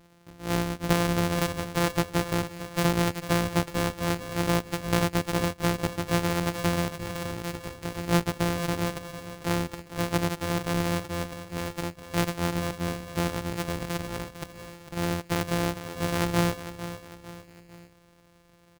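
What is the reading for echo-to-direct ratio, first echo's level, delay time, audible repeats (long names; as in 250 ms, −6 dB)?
−11.0 dB, −12.0 dB, 451 ms, 3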